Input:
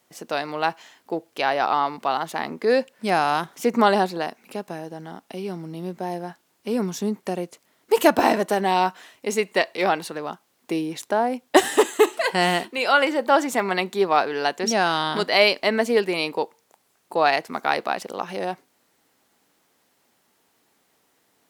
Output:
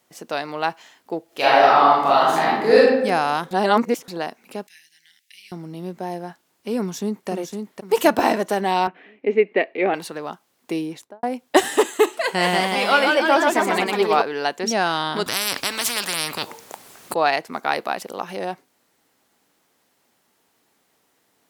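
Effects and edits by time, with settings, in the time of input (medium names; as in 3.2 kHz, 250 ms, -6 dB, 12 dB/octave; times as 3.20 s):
1.26–2.80 s: reverb throw, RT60 1 s, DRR -7.5 dB
3.51–4.08 s: reverse
4.67–5.52 s: elliptic high-pass 1.9 kHz
6.80–7.29 s: echo throw 510 ms, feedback 35%, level -5.5 dB
8.87–9.94 s: cabinet simulation 160–2500 Hz, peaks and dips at 280 Hz +8 dB, 420 Hz +7 dB, 1 kHz -10 dB, 1.4 kHz -6 dB, 2.3 kHz +5 dB
10.83–11.23 s: studio fade out
12.08–14.22 s: ever faster or slower copies 200 ms, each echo +1 st, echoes 3
15.26–17.14 s: spectrum-flattening compressor 10:1
17.72–18.35 s: peaking EQ 13 kHz +6 dB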